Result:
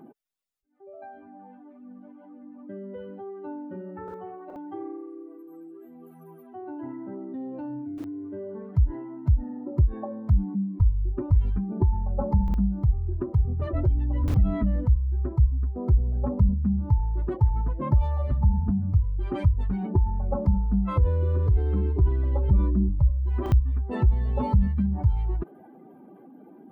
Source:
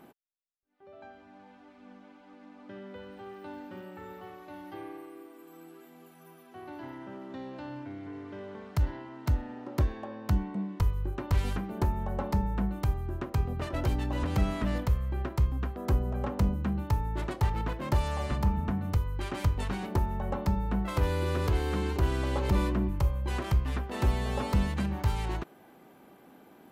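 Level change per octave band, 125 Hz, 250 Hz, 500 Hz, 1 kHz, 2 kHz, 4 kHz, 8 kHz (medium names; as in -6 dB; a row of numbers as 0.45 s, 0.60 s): +6.5 dB, +4.5 dB, +1.5 dB, -1.5 dB, no reading, under -10 dB, under -15 dB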